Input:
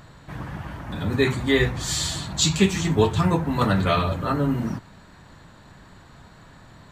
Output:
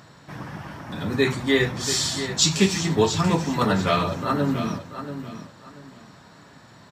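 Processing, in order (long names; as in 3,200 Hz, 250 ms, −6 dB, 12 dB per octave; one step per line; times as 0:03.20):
high-pass filter 130 Hz 12 dB per octave
parametric band 5,400 Hz +9.5 dB 0.26 octaves
on a send: repeating echo 685 ms, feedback 25%, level −10.5 dB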